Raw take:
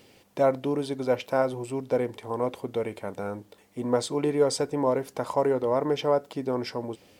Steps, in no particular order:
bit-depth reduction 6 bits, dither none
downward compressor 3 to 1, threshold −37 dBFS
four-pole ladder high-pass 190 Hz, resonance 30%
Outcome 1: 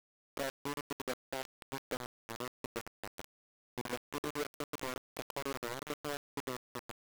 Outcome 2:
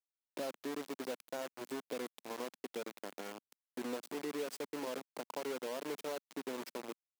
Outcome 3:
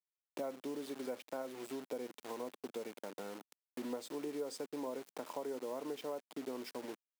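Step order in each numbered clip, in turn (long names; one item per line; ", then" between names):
downward compressor, then four-pole ladder high-pass, then bit-depth reduction
downward compressor, then bit-depth reduction, then four-pole ladder high-pass
bit-depth reduction, then downward compressor, then four-pole ladder high-pass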